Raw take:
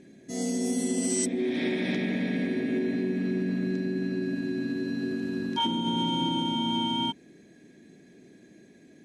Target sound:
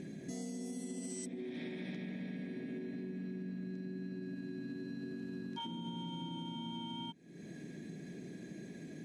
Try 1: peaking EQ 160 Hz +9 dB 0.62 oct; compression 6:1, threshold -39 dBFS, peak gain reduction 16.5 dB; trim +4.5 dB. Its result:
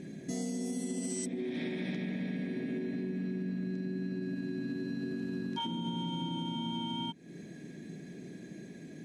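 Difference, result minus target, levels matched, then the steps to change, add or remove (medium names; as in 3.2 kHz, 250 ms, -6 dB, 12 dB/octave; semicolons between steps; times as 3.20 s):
compression: peak gain reduction -6.5 dB
change: compression 6:1, threshold -47 dBFS, peak gain reduction 23.5 dB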